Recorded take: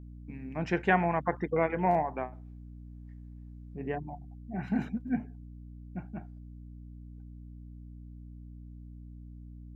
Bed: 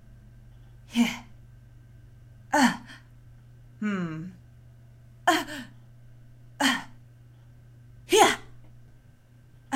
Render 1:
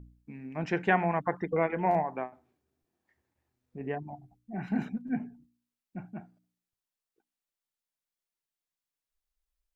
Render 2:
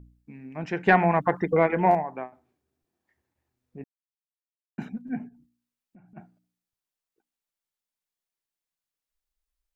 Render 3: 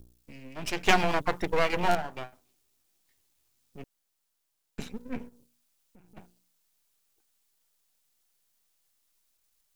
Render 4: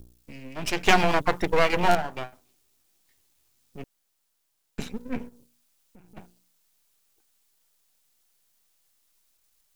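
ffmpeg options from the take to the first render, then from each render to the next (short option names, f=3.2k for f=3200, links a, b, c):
-af "bandreject=f=60:t=h:w=4,bandreject=f=120:t=h:w=4,bandreject=f=180:t=h:w=4,bandreject=f=240:t=h:w=4,bandreject=f=300:t=h:w=4"
-filter_complex "[0:a]asettb=1/sr,asplit=3[a][b][c];[a]atrim=end=0.864[d];[b]atrim=start=0.86:end=1.95,asetpts=PTS-STARTPTS,afade=t=in:d=0.004:c=qsin,afade=t=out:st=1.086:d=0.004:c=qsin,acontrast=81[e];[c]atrim=start=1.946[f];[d][e]acrossfade=d=0.004:c1=hsin:c2=qsin[g];[g][f]acrossfade=d=0.004:c1=qsin:c2=hsin,asplit=3[h][i][j];[h]afade=t=out:st=5.28:d=0.02[k];[i]acompressor=threshold=-51dB:ratio=6:attack=3.2:release=140:knee=1:detection=peak,afade=t=in:st=5.28:d=0.02,afade=t=out:st=6.16:d=0.02[l];[j]afade=t=in:st=6.16:d=0.02[m];[k][l][m]amix=inputs=3:normalize=0,asplit=3[n][o][p];[n]atrim=end=3.84,asetpts=PTS-STARTPTS,afade=t=out:st=3.836:d=0.004:c=hsin[q];[o]atrim=start=3.84:end=4.78,asetpts=PTS-STARTPTS,volume=0[r];[p]atrim=start=4.78,asetpts=PTS-STARTPTS,afade=t=in:d=0.004:c=hsin[s];[q][r][s]concat=n=3:v=0:a=1"
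-filter_complex "[0:a]acrossover=split=360[a][b];[b]aexciter=amount=7.1:drive=5.6:freq=2.6k[c];[a][c]amix=inputs=2:normalize=0,aeval=exprs='max(val(0),0)':c=same"
-af "volume=4.5dB,alimiter=limit=-2dB:level=0:latency=1"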